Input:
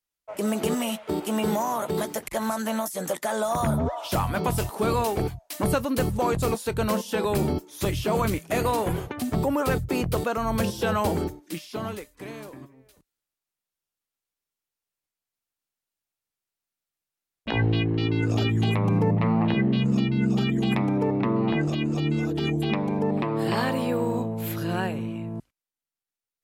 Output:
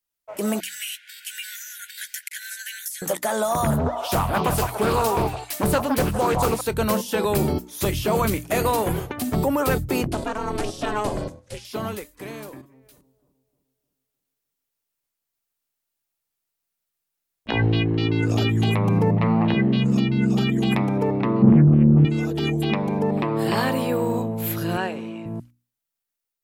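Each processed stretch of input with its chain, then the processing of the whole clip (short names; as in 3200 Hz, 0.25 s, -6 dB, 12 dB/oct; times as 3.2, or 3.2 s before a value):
0.6–3.02 brick-wall FIR high-pass 1400 Hz + high shelf 9200 Hz -5.5 dB
3.7–6.61 delay with a stepping band-pass 0.162 s, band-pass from 890 Hz, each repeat 1.4 oct, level -1 dB + Doppler distortion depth 0.35 ms
10.07–11.65 half-wave gain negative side -3 dB + LPF 9600 Hz 24 dB/oct + ring modulator 210 Hz
12.61–17.49 compressor 3:1, threshold -52 dBFS + analogue delay 0.306 s, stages 2048, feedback 43%, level -10.5 dB
21.42–22.05 Gaussian blur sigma 5.7 samples + resonant low shelf 310 Hz +10 dB, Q 1.5 + Doppler distortion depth 0.28 ms
24.77–25.26 block floating point 7-bit + BPF 260–6400 Hz
whole clip: high shelf 12000 Hz +9 dB; notches 60/120/180/240/300 Hz; AGC gain up to 3 dB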